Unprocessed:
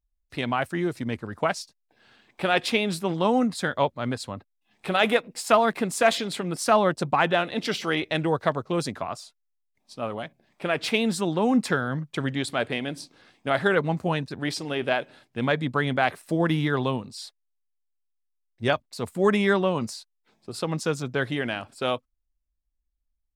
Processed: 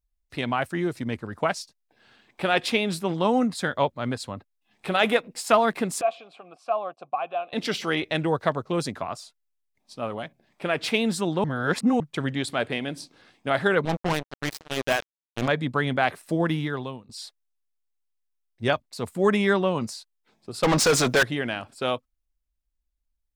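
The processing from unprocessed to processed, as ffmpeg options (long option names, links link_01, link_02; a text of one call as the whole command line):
ffmpeg -i in.wav -filter_complex "[0:a]asettb=1/sr,asplit=3[link_01][link_02][link_03];[link_01]atrim=end=6.014[link_04];[link_02]atrim=start=6.01:end=7.53,asetpts=PTS-STARTPTS,afade=type=in:duration=0.004:curve=qsin,afade=type=out:start_time=1.516:duration=0.004:curve=qsin,asplit=3[link_05][link_06][link_07];[link_05]bandpass=frequency=730:width_type=q:width=8,volume=0dB[link_08];[link_06]bandpass=frequency=1090:width_type=q:width=8,volume=-6dB[link_09];[link_07]bandpass=frequency=2440:width_type=q:width=8,volume=-9dB[link_10];[link_08][link_09][link_10]amix=inputs=3:normalize=0[link_11];[link_03]atrim=start=7.526[link_12];[link_04][link_11]acrossfade=duration=0.004:curve1=hsin:curve2=qsin[link_13];[link_13][link_12]acrossfade=duration=0.004:curve1=qsin:curve2=hsin,asettb=1/sr,asplit=3[link_14][link_15][link_16];[link_14]atrim=end=13.854[link_17];[link_15]atrim=start=13.85:end=15.48,asetpts=PTS-STARTPTS,afade=type=in:duration=0.004:curve=qsin,afade=type=out:start_time=1.626:duration=0.004:curve=qsin,acrusher=bits=3:mix=0:aa=0.5[link_18];[link_16]atrim=start=15.476[link_19];[link_17][link_18]acrossfade=duration=0.004:curve1=hsin:curve2=qsin[link_20];[link_20][link_19]acrossfade=duration=0.004:curve1=qsin:curve2=hsin,asettb=1/sr,asplit=3[link_21][link_22][link_23];[link_21]atrim=end=20.634[link_24];[link_22]atrim=start=20.63:end=21.23,asetpts=PTS-STARTPTS,afade=type=in:duration=0.004:curve=qsin,afade=type=out:start_time=0.596:duration=0.004:curve=qsin,asplit=2[link_25][link_26];[link_26]highpass=frequency=720:poles=1,volume=30dB,asoftclip=type=tanh:threshold=-12dB[link_27];[link_25][link_27]amix=inputs=2:normalize=0,lowpass=frequency=7900:poles=1,volume=-6dB[link_28];[link_23]atrim=start=21.226[link_29];[link_24][link_28]acrossfade=duration=0.004:curve1=hsin:curve2=qsin[link_30];[link_30][link_29]acrossfade=duration=0.004:curve1=qsin:curve2=hsin,asplit=4[link_31][link_32][link_33][link_34];[link_31]atrim=end=11.442[link_35];[link_32]atrim=start=11.438:end=12.002,asetpts=PTS-STARTPTS,areverse[link_36];[link_33]atrim=start=11.998:end=17.09,asetpts=PTS-STARTPTS,afade=type=out:start_time=4.362:duration=0.73:silence=0.133352[link_37];[link_34]atrim=start=17.09,asetpts=PTS-STARTPTS,afade=type=in:duration=0.004:curve=hsin:silence=0.133352[link_38];[link_35][link_36]acrossfade=duration=0.004:curve1=hsin:curve2=hsin[link_39];[link_37][link_38]concat=n=2:v=0:a=1[link_40];[link_39][link_40]acrossfade=duration=0.004:curve1=hsin:curve2=hsin" out.wav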